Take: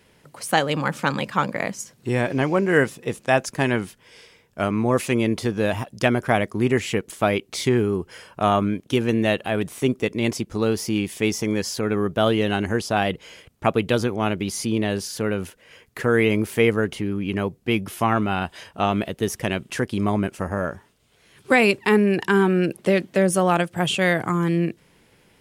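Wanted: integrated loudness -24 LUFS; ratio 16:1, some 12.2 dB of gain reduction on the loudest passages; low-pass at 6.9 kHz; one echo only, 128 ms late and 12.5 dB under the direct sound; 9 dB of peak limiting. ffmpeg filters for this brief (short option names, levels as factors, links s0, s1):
-af "lowpass=6900,acompressor=threshold=0.0562:ratio=16,alimiter=limit=0.0891:level=0:latency=1,aecho=1:1:128:0.237,volume=2.66"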